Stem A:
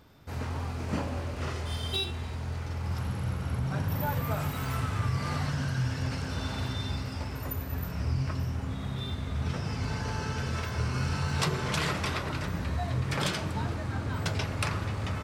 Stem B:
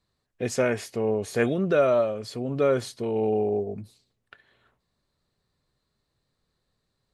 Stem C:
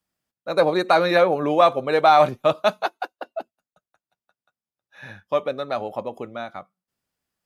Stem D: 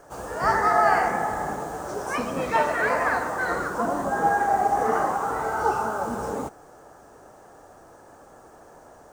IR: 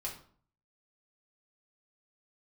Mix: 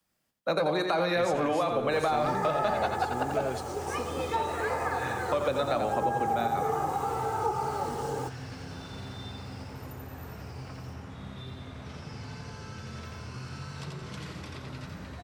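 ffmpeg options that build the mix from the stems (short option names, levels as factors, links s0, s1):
-filter_complex "[0:a]highshelf=f=5300:g=-10,acrossover=split=360|3600[s0][s1][s2];[s0]acompressor=threshold=0.0141:ratio=4[s3];[s1]acompressor=threshold=0.00447:ratio=4[s4];[s2]acompressor=threshold=0.00355:ratio=4[s5];[s3][s4][s5]amix=inputs=3:normalize=0,adelay=2400,volume=0.75,asplit=2[s6][s7];[s7]volume=0.708[s8];[1:a]asoftclip=type=tanh:threshold=0.0708,adelay=750,volume=0.75,asplit=2[s9][s10];[s10]volume=0.168[s11];[2:a]alimiter=limit=0.158:level=0:latency=1,volume=1.33,asplit=4[s12][s13][s14][s15];[s13]volume=0.299[s16];[s14]volume=0.501[s17];[3:a]equalizer=f=1700:t=o:w=0.77:g=-6.5,aecho=1:1:2.4:0.65,adelay=1800,volume=0.562[s18];[s15]apad=whole_len=347730[s19];[s9][s19]sidechaingate=range=0.0224:threshold=0.00316:ratio=16:detection=peak[s20];[4:a]atrim=start_sample=2205[s21];[s16][s21]afir=irnorm=-1:irlink=0[s22];[s8][s11][s17]amix=inputs=3:normalize=0,aecho=0:1:86|172|258|344|430:1|0.34|0.116|0.0393|0.0134[s23];[s6][s20][s12][s18][s22][s23]amix=inputs=6:normalize=0,acrossover=split=110|270|560[s24][s25][s26][s27];[s24]acompressor=threshold=0.00355:ratio=4[s28];[s25]acompressor=threshold=0.0141:ratio=4[s29];[s26]acompressor=threshold=0.0158:ratio=4[s30];[s27]acompressor=threshold=0.0398:ratio=4[s31];[s28][s29][s30][s31]amix=inputs=4:normalize=0"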